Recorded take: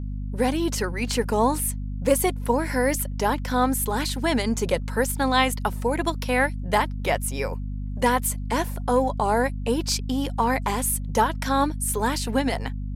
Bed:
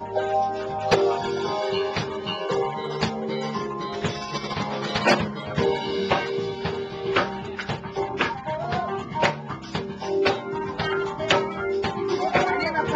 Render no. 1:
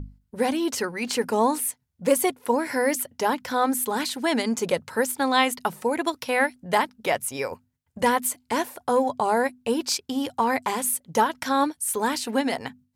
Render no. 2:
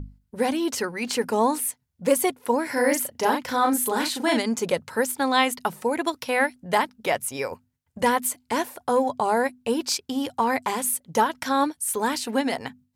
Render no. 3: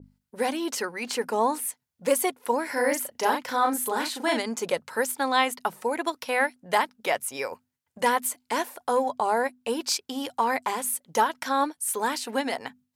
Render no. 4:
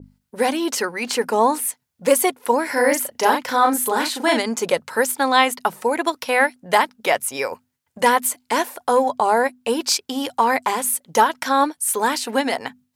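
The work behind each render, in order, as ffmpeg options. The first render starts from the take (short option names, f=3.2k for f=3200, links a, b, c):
-af "bandreject=f=50:t=h:w=6,bandreject=f=100:t=h:w=6,bandreject=f=150:t=h:w=6,bandreject=f=200:t=h:w=6,bandreject=f=250:t=h:w=6"
-filter_complex "[0:a]asettb=1/sr,asplit=3[a][b][c];[a]atrim=end=2.734[d];[b]atrim=start=2.73:end=4.38,asetpts=PTS-STARTPTS,afade=t=in:d=0.004:c=qsin,afade=t=out:st=1.646:d=0.004:c=qsin,asplit=2[e][f];[f]adelay=37,volume=-3dB[g];[e][g]amix=inputs=2:normalize=0,atrim=end_sample=72765[h];[c]atrim=start=4.376[i];[d][h]acrossfade=d=0.004:c1=hsin:c2=qsin[j];[j][i]acrossfade=d=0.004:c1=qsin:c2=hsin"
-af "highpass=f=470:p=1,adynamicequalizer=threshold=0.0141:dfrequency=1800:dqfactor=0.7:tfrequency=1800:tqfactor=0.7:attack=5:release=100:ratio=0.375:range=3:mode=cutabove:tftype=highshelf"
-af "volume=7dB,alimiter=limit=-1dB:level=0:latency=1"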